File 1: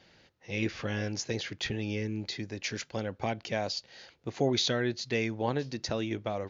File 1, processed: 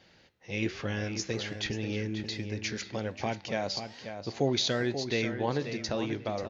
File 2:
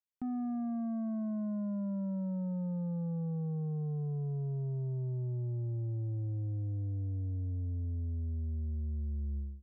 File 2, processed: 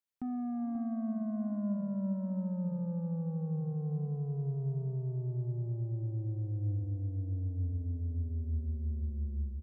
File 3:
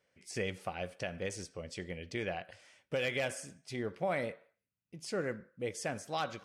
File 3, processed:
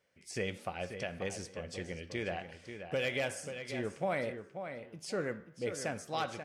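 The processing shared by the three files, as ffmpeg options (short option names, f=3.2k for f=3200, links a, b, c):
-filter_complex "[0:a]asplit=2[a][b];[b]adelay=536,lowpass=f=4k:p=1,volume=-8.5dB,asplit=2[c][d];[d]adelay=536,lowpass=f=4k:p=1,volume=0.22,asplit=2[e][f];[f]adelay=536,lowpass=f=4k:p=1,volume=0.22[g];[a][c][e][g]amix=inputs=4:normalize=0,flanger=delay=9.7:depth=5.8:regen=89:speed=1.2:shape=sinusoidal,volume=4.5dB"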